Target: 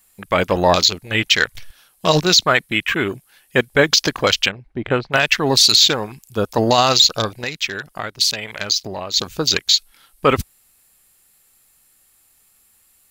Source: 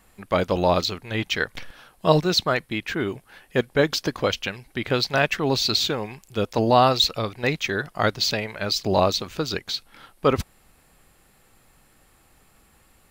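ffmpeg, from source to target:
ffmpeg -i in.wav -filter_complex "[0:a]asplit=3[link_01][link_02][link_03];[link_01]afade=type=out:start_time=4.48:duration=0.02[link_04];[link_02]lowpass=1500,afade=type=in:start_time=4.48:duration=0.02,afade=type=out:start_time=5.12:duration=0.02[link_05];[link_03]afade=type=in:start_time=5.12:duration=0.02[link_06];[link_04][link_05][link_06]amix=inputs=3:normalize=0,afwtdn=0.02,asplit=3[link_07][link_08][link_09];[link_07]afade=type=out:start_time=7.42:duration=0.02[link_10];[link_08]acompressor=threshold=-32dB:ratio=6,afade=type=in:start_time=7.42:duration=0.02,afade=type=out:start_time=9.16:duration=0.02[link_11];[link_09]afade=type=in:start_time=9.16:duration=0.02[link_12];[link_10][link_11][link_12]amix=inputs=3:normalize=0,crystalizer=i=7.5:c=0,alimiter=level_in=4.5dB:limit=-1dB:release=50:level=0:latency=1,volume=-1dB" out.wav

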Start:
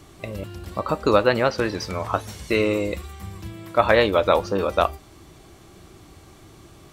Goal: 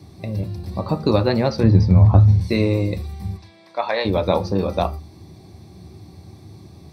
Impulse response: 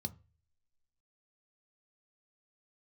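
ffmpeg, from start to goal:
-filter_complex "[0:a]asettb=1/sr,asplit=3[link_01][link_02][link_03];[link_01]atrim=end=1.634[link_04];[link_02]atrim=start=1.63:end=2.41,asetpts=PTS-STARTPTS,afade=type=in:duration=0.004:curve=qsin,afade=type=out:start_time=0.776:duration=0.004:curve=qsin,aemphasis=mode=reproduction:type=riaa[link_05];[link_03]atrim=start=2.406[link_06];[link_04][link_05]acrossfade=duration=0.004:curve1=hsin:curve2=qsin[link_07];[link_07][link_06]acrossfade=duration=0.004:curve1=qsin:curve2=hsin,asplit=3[link_08][link_09][link_10];[link_08]afade=type=out:start_time=3.36:duration=0.02[link_11];[link_09]highpass=690,lowpass=5800,afade=type=in:start_time=3.36:duration=0.02,afade=type=out:start_time=4.04:duration=0.02[link_12];[link_10]afade=type=in:start_time=4.04:duration=0.02[link_13];[link_11][link_12][link_13]amix=inputs=3:normalize=0[link_14];[1:a]atrim=start_sample=2205,atrim=end_sample=6174[link_15];[link_14][link_15]afir=irnorm=-1:irlink=0,volume=-1dB"

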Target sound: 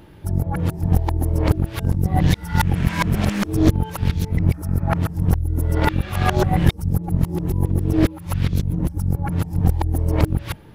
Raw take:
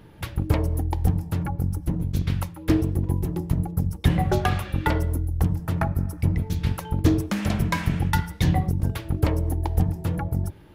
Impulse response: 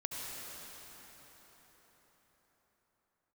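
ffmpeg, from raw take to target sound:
-af "areverse,aeval=exprs='0.473*(cos(1*acos(clip(val(0)/0.473,-1,1)))-cos(1*PI/2))+0.188*(cos(2*acos(clip(val(0)/0.473,-1,1)))-cos(2*PI/2))':channel_layout=same,asoftclip=type=tanh:threshold=-5dB,volume=4dB"

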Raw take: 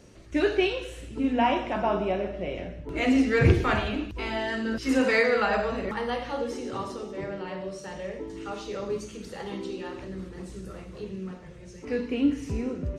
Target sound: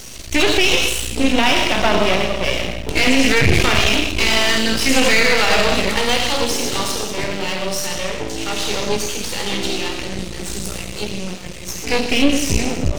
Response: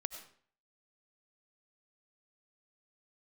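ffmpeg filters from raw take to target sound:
-filter_complex "[0:a]acrossover=split=3400[link_01][link_02];[link_02]acompressor=threshold=-48dB:ratio=4:attack=1:release=60[link_03];[link_01][link_03]amix=inputs=2:normalize=0[link_04];[1:a]atrim=start_sample=2205[link_05];[link_04][link_05]afir=irnorm=-1:irlink=0,aexciter=amount=6.6:drive=3.8:freq=2200,lowshelf=frequency=62:gain=7.5,aeval=exprs='max(val(0),0)':channel_layout=same,asettb=1/sr,asplit=3[link_06][link_07][link_08];[link_06]atrim=end=7.864[link_09];[link_07]atrim=start=7.86:end=10.62,asetpts=PTS-STARTPTS,afade=type=in:duration=0.004:curve=qsin,afade=type=out:start_time=2.756:duration=0.004:curve=qsin,highshelf=frequency=7000:gain=-5[link_10];[link_08]atrim=start=10.616[link_11];[link_09][link_10]acrossfade=duration=0.004:curve1=hsin:curve2=qsin[link_12];[link_12][link_11]acrossfade=duration=0.004:curve1=qsin:curve2=hsin,alimiter=level_in=16dB:limit=-1dB:release=50:level=0:latency=1,volume=-1dB"

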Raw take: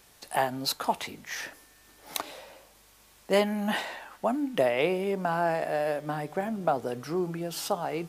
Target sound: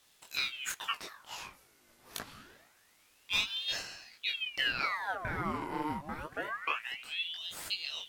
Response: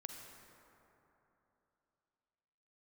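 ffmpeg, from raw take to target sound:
-af "flanger=delay=18:depth=5:speed=2.2,aeval=exprs='val(0)*sin(2*PI*1900*n/s+1900*0.85/0.26*sin(2*PI*0.26*n/s))':channel_layout=same,volume=-2dB"

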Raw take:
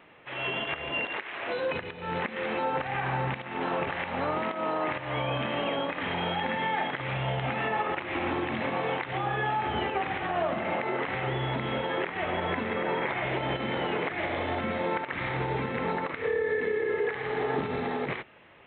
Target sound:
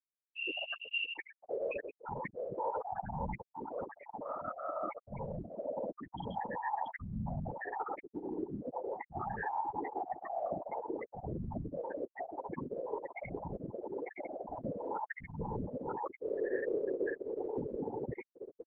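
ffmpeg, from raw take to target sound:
ffmpeg -i in.wav -af "aecho=1:1:1040|2080:0.106|0.018,areverse,acompressor=threshold=-39dB:ratio=8,areverse,afftfilt=real='re*gte(hypot(re,im),0.0398)':imag='im*gte(hypot(re,im),0.0398)':win_size=1024:overlap=0.75,afftfilt=real='hypot(re,im)*cos(2*PI*random(0))':imag='hypot(re,im)*sin(2*PI*random(1))':win_size=512:overlap=0.75,volume=13.5dB" out.wav

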